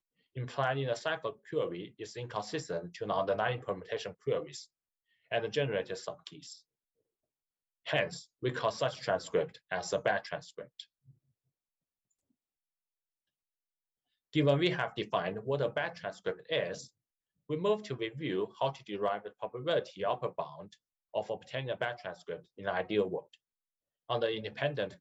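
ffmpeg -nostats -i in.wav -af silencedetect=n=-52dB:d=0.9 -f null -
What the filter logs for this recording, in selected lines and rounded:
silence_start: 6.59
silence_end: 7.86 | silence_duration: 1.26
silence_start: 11.11
silence_end: 14.33 | silence_duration: 3.23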